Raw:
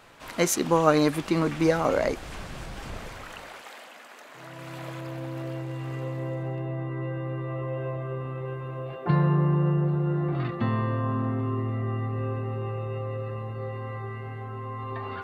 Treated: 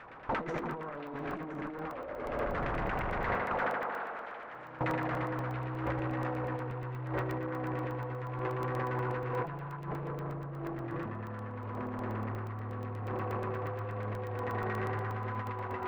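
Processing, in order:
converter with a step at zero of −26 dBFS
notch filter 660 Hz, Q 19
noise gate with hold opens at −24 dBFS
asymmetric clip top −24 dBFS
auto-filter low-pass saw down 9 Hz 550–2,300 Hz
tape delay 75 ms, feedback 84%, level −5 dB, low-pass 4,100 Hz
compressor whose output falls as the input rises −30 dBFS, ratio −1
on a send: echo through a band-pass that steps 326 ms, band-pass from 1,300 Hz, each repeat 1.4 octaves, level −6 dB
on the sum: wrong playback speed 25 fps video run at 24 fps
regular buffer underruns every 0.12 s, samples 64, zero, from 0:00.59
level −6.5 dB

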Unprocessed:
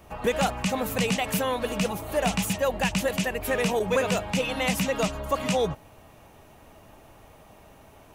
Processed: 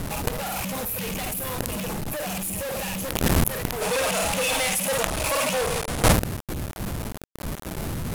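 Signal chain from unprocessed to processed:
loose part that buzzes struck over −38 dBFS, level −26 dBFS
wind on the microphone 170 Hz −23 dBFS
high-shelf EQ 6,600 Hz +6 dB
gate on every frequency bin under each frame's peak −20 dB strong
reverb reduction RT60 0.76 s
hum removal 51.25 Hz, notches 2
on a send: flutter between parallel walls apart 9 metres, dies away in 0.44 s
on the sum: log-companded quantiser 2 bits
parametric band 12,000 Hz +12 dB 0.98 octaves
in parallel at +3 dB: compressor whose output falls as the input rises −27 dBFS, ratio −1
on the sum: gain on a spectral selection 0:03.81–0:06.12, 450–11,000 Hz +7 dB
level −13.5 dB

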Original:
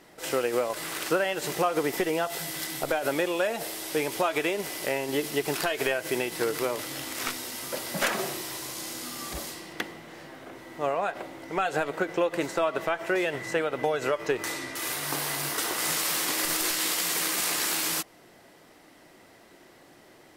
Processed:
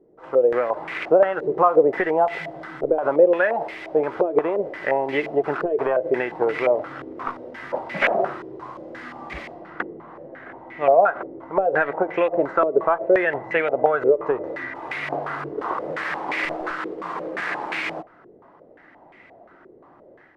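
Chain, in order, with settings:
dynamic equaliser 570 Hz, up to +5 dB, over −36 dBFS, Q 0.87
automatic gain control gain up to 6.5 dB
low-pass on a step sequencer 5.7 Hz 430–2,200 Hz
level −6 dB

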